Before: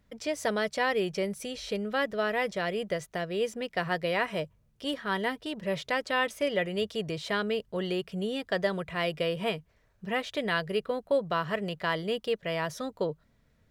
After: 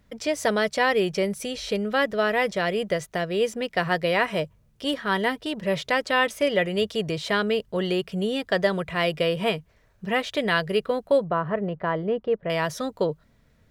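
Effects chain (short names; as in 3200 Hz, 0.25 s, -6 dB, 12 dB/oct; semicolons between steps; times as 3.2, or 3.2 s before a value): 11.24–12.5 LPF 1200 Hz 12 dB/oct; gain +6 dB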